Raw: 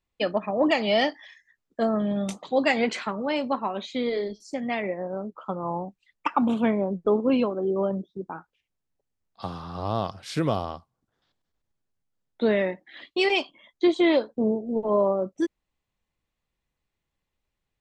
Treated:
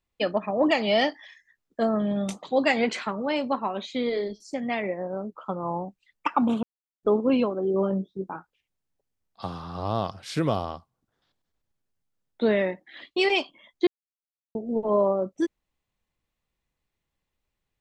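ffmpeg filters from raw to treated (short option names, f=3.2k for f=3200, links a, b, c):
-filter_complex "[0:a]asettb=1/sr,asplit=3[a][b][c];[a]atrim=end=7.724[d];[b]atrim=start=7.72:end=8.36,asetpts=PTS-STARTPTS,afade=t=in:d=0.004:c=qsin,afade=t=out:st=0.636:d=0.004:c=qsin,asplit=2[e][f];[f]adelay=21,volume=-6.5dB[g];[e][g]amix=inputs=2:normalize=0,atrim=end_sample=28224[h];[c]atrim=start=8.356[i];[d][h]acrossfade=d=0.004:c1=hsin:c2=qsin[j];[j][i]acrossfade=d=0.004:c1=qsin:c2=hsin,asplit=5[k][l][m][n][o];[k]atrim=end=6.63,asetpts=PTS-STARTPTS,afade=t=out:st=6.626:d=0.004:c=hsin[p];[l]atrim=start=6.63:end=7.03,asetpts=PTS-STARTPTS,volume=0[q];[m]atrim=start=7.03:end=13.87,asetpts=PTS-STARTPTS,afade=t=in:d=0.004:c=hsin,afade=t=out:st=6.836:d=0.004:c=hsin[r];[n]atrim=start=13.87:end=14.55,asetpts=PTS-STARTPTS,volume=0[s];[o]atrim=start=14.55,asetpts=PTS-STARTPTS,afade=t=in:d=0.004:c=hsin[t];[p][q][r][s][t]concat=n=5:v=0:a=1"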